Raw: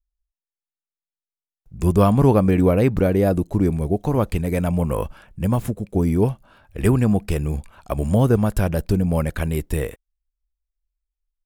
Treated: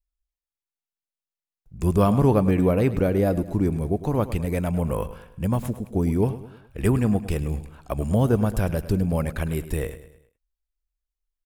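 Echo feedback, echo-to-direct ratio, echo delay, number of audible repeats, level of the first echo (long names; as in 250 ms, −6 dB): 45%, −13.0 dB, 105 ms, 4, −14.0 dB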